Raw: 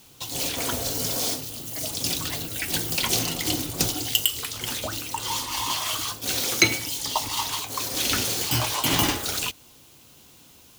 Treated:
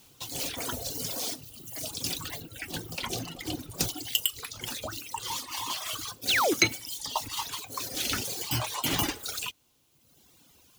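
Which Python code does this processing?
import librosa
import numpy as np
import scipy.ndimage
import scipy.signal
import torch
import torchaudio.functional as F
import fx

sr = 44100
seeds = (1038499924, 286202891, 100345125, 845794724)

y = fx.dereverb_blind(x, sr, rt60_s=1.4)
y = fx.high_shelf(y, sr, hz=3400.0, db=-9.0, at=(2.4, 3.71))
y = fx.highpass(y, sr, hz=130.0, slope=6, at=(5.35, 5.85))
y = fx.spec_paint(y, sr, seeds[0], shape='fall', start_s=6.28, length_s=0.26, low_hz=260.0, high_hz=4900.0, level_db=-20.0)
y = y * 10.0 ** (-4.5 / 20.0)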